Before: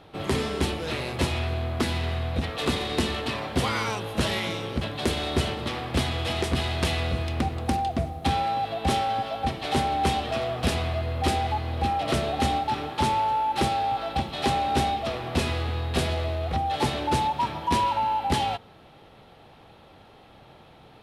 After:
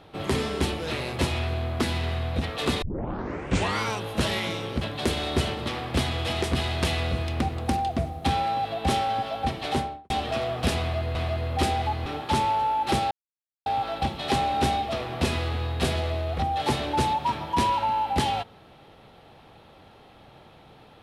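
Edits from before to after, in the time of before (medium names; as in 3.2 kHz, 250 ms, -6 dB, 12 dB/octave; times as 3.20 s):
2.82 s: tape start 0.99 s
9.65–10.10 s: studio fade out
10.80–11.15 s: loop, 2 plays
11.71–12.75 s: delete
13.80 s: insert silence 0.55 s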